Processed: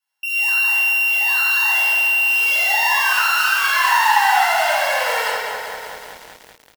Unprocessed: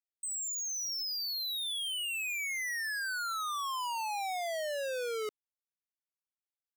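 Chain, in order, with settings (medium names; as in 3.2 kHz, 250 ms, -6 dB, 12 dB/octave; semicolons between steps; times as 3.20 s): sorted samples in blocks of 16 samples; peaking EQ 900 Hz +5 dB 0.91 oct; speakerphone echo 170 ms, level -22 dB; reverberation RT60 1.9 s, pre-delay 3 ms, DRR -10.5 dB; in parallel at -2 dB: compression 12:1, threshold -32 dBFS, peak gain reduction 20 dB; on the sum: high-pass 150 Hz 24 dB/octave; resonant low shelf 620 Hz -13 dB, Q 1.5; comb of notches 1.2 kHz; bit-crushed delay 192 ms, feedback 80%, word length 6-bit, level -9 dB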